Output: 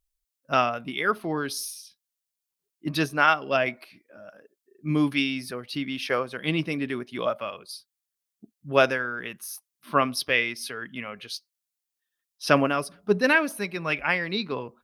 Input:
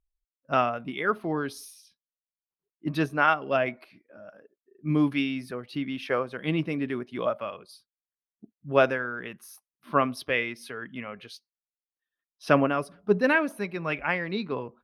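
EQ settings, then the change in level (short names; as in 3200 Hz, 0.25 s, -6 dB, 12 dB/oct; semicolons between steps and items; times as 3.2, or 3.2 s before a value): high shelf 2900 Hz +11.5 dB; dynamic EQ 5000 Hz, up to +4 dB, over -46 dBFS, Q 2.8; 0.0 dB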